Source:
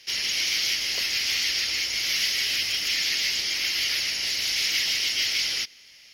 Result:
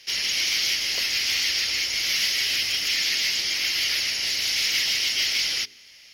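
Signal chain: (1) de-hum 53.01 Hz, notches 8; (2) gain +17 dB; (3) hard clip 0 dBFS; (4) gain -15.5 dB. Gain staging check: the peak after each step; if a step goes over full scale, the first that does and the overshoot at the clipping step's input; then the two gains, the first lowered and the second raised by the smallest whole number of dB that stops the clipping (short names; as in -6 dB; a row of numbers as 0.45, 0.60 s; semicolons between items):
-11.5, +5.5, 0.0, -15.5 dBFS; step 2, 5.5 dB; step 2 +11 dB, step 4 -9.5 dB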